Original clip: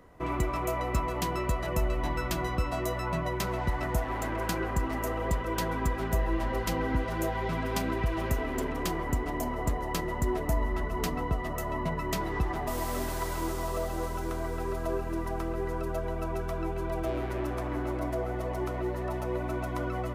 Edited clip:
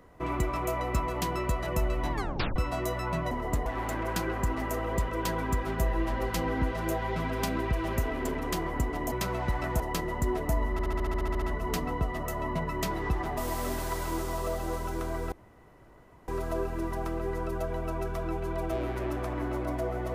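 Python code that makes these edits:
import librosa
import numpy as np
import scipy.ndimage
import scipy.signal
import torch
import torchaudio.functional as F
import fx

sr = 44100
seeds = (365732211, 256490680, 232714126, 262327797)

y = fx.edit(x, sr, fx.tape_stop(start_s=2.12, length_s=0.44),
    fx.swap(start_s=3.31, length_s=0.68, other_s=9.45, other_length_s=0.35),
    fx.stutter(start_s=10.72, slice_s=0.07, count=11),
    fx.insert_room_tone(at_s=14.62, length_s=0.96), tone=tone)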